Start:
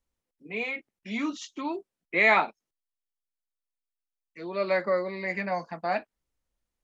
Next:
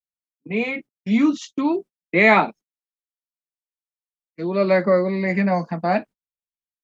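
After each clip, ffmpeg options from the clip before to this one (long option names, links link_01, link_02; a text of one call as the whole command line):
ffmpeg -i in.wav -af "agate=range=-38dB:threshold=-45dB:ratio=16:detection=peak,equalizer=frequency=170:width_type=o:width=2.5:gain=12.5,volume=4.5dB" out.wav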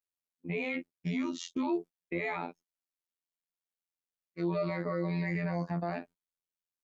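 ffmpeg -i in.wav -af "acompressor=threshold=-21dB:ratio=5,afftfilt=real='hypot(re,im)*cos(PI*b)':imag='0':win_size=2048:overlap=0.75,alimiter=limit=-22dB:level=0:latency=1:release=19" out.wav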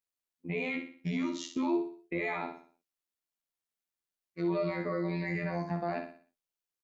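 ffmpeg -i in.wav -af "aecho=1:1:61|122|183|244|305:0.422|0.169|0.0675|0.027|0.0108" out.wav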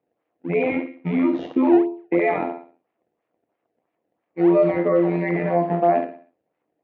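ffmpeg -i in.wav -filter_complex "[0:a]crystalizer=i=2.5:c=0,asplit=2[link_01][link_02];[link_02]acrusher=samples=23:mix=1:aa=0.000001:lfo=1:lforange=36.8:lforate=3,volume=-6dB[link_03];[link_01][link_03]amix=inputs=2:normalize=0,highpass=140,equalizer=frequency=310:width_type=q:width=4:gain=9,equalizer=frequency=490:width_type=q:width=4:gain=8,equalizer=frequency=700:width_type=q:width=4:gain=8,equalizer=frequency=1500:width_type=q:width=4:gain=-5,lowpass=frequency=2300:width=0.5412,lowpass=frequency=2300:width=1.3066,volume=6dB" out.wav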